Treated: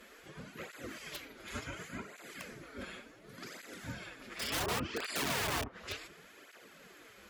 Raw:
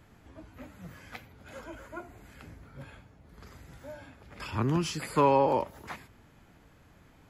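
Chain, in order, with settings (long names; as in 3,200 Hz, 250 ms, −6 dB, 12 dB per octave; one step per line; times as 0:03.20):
treble cut that deepens with the level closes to 1,000 Hz, closed at −26 dBFS
gate on every frequency bin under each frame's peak −10 dB weak
parametric band 860 Hz −11.5 dB 0.72 octaves
wrap-around overflow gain 39 dB
through-zero flanger with one copy inverted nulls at 0.69 Hz, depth 7.2 ms
level +13 dB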